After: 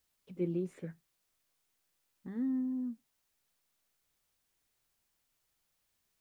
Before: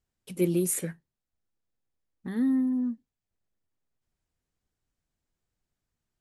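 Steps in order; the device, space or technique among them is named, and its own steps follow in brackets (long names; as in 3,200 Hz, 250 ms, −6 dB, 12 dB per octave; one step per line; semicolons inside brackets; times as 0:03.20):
cassette deck with a dirty head (head-to-tape spacing loss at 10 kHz 34 dB; tape wow and flutter 21 cents; white noise bed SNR 38 dB)
level −7.5 dB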